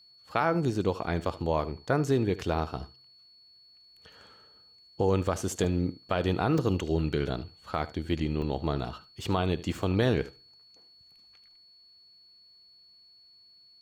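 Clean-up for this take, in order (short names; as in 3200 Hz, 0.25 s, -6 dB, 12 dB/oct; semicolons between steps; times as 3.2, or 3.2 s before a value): notch 4400 Hz, Q 30; interpolate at 5.64/6.58/8.42/9.04, 2.2 ms; inverse comb 75 ms -17.5 dB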